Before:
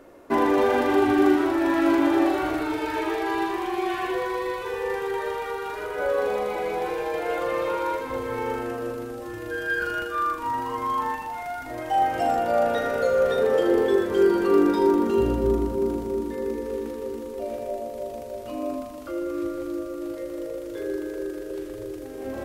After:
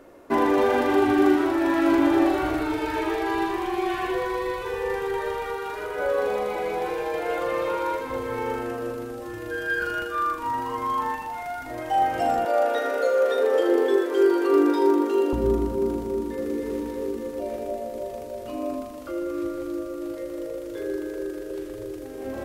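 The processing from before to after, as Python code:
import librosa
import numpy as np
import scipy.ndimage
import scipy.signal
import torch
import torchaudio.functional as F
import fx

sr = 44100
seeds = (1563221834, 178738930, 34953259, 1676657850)

y = fx.low_shelf(x, sr, hz=120.0, db=8.0, at=(1.92, 5.54))
y = fx.steep_highpass(y, sr, hz=260.0, slope=96, at=(12.45, 15.33))
y = fx.echo_throw(y, sr, start_s=16.08, length_s=0.45, ms=290, feedback_pct=75, wet_db=-3.0)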